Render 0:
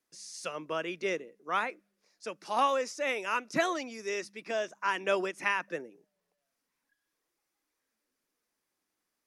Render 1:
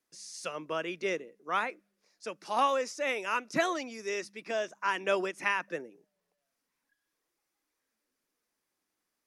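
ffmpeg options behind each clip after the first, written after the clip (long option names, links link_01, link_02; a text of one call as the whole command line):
ffmpeg -i in.wav -af anull out.wav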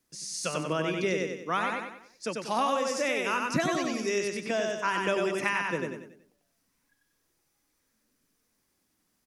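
ffmpeg -i in.wav -af "bass=frequency=250:gain=13,treble=frequency=4000:gain=4,aecho=1:1:94|188|282|376|470:0.668|0.267|0.107|0.0428|0.0171,acompressor=threshold=-29dB:ratio=3,volume=4dB" out.wav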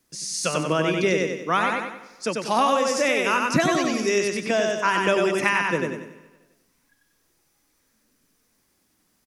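ffmpeg -i in.wav -af "aecho=1:1:169|338|507|676:0.0794|0.0405|0.0207|0.0105,volume=7dB" out.wav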